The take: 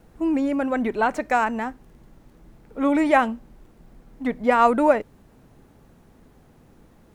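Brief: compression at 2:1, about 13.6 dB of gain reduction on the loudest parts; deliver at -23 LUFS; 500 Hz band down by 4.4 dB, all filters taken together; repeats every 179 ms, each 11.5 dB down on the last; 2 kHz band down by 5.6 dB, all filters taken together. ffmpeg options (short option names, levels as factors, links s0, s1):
-af "equalizer=f=500:t=o:g=-5,equalizer=f=2000:t=o:g=-7.5,acompressor=threshold=0.00891:ratio=2,aecho=1:1:179|358|537:0.266|0.0718|0.0194,volume=4.47"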